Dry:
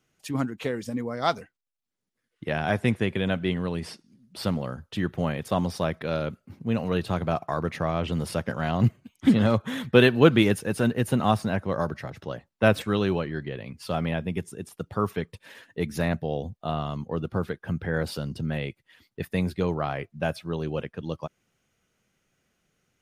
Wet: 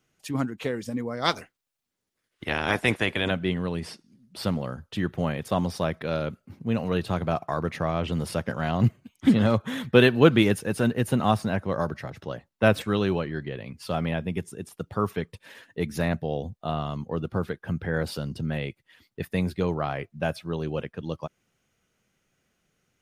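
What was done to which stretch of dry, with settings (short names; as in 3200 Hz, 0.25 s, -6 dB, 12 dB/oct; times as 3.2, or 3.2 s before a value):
1.24–3.3 spectral limiter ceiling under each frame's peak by 16 dB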